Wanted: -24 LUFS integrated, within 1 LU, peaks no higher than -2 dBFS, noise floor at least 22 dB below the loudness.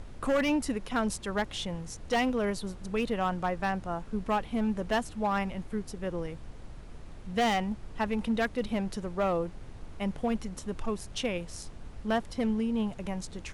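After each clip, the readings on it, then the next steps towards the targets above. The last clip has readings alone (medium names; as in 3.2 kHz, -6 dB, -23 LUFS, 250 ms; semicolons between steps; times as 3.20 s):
clipped samples 1.5%; clipping level -22.0 dBFS; noise floor -45 dBFS; noise floor target -54 dBFS; loudness -31.5 LUFS; peak level -22.0 dBFS; loudness target -24.0 LUFS
-> clip repair -22 dBFS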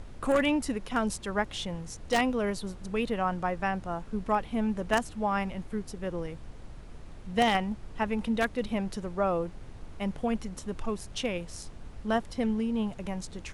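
clipped samples 0.0%; noise floor -45 dBFS; noise floor target -53 dBFS
-> noise print and reduce 8 dB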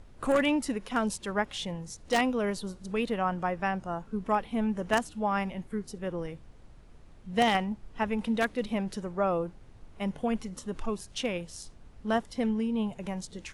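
noise floor -53 dBFS; loudness -31.0 LUFS; peak level -12.5 dBFS; loudness target -24.0 LUFS
-> trim +7 dB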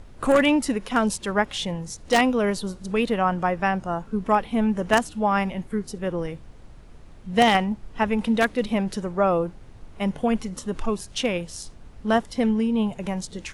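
loudness -24.0 LUFS; peak level -5.5 dBFS; noise floor -46 dBFS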